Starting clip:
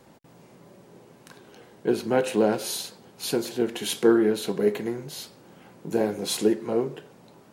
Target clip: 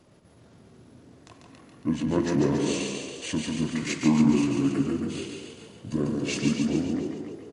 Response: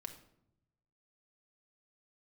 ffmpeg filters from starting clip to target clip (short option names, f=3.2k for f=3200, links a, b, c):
-filter_complex "[0:a]bandreject=f=266.9:t=h:w=4,bandreject=f=533.8:t=h:w=4,bandreject=f=800.7:t=h:w=4,bandreject=f=1.0676k:t=h:w=4,bandreject=f=1.3345k:t=h:w=4,bandreject=f=1.6014k:t=h:w=4,bandreject=f=1.8683k:t=h:w=4,bandreject=f=2.1352k:t=h:w=4,bandreject=f=2.4021k:t=h:w=4,bandreject=f=2.669k:t=h:w=4,bandreject=f=2.9359k:t=h:w=4,bandreject=f=3.2028k:t=h:w=4,bandreject=f=3.4697k:t=h:w=4,bandreject=f=3.7366k:t=h:w=4,asetrate=29433,aresample=44100,atempo=1.49831,asplit=5[a][b][c][d][e];[b]adelay=279,afreqshift=57,volume=-7.5dB[f];[c]adelay=558,afreqshift=114,volume=-16.9dB[g];[d]adelay=837,afreqshift=171,volume=-26.2dB[h];[e]adelay=1116,afreqshift=228,volume=-35.6dB[i];[a][f][g][h][i]amix=inputs=5:normalize=0,asplit=2[j][k];[1:a]atrim=start_sample=2205,adelay=143[l];[k][l]afir=irnorm=-1:irlink=0,volume=0.5dB[m];[j][m]amix=inputs=2:normalize=0,volume=-3dB"